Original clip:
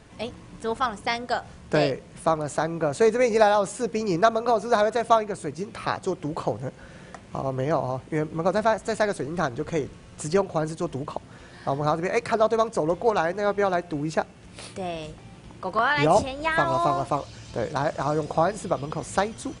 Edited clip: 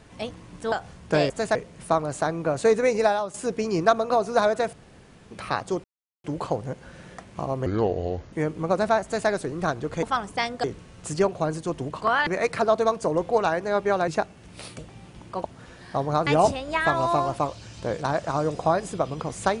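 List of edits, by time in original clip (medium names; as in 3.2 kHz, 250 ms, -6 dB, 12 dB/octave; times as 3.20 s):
0.72–1.33 s: move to 9.78 s
3.08–3.70 s: fade out equal-power, to -12.5 dB
5.09–5.67 s: room tone
6.20 s: insert silence 0.40 s
7.62–8.08 s: speed 69%
8.79–9.04 s: copy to 1.91 s
11.15–11.99 s: swap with 15.72–15.98 s
13.80–14.07 s: delete
14.78–15.08 s: delete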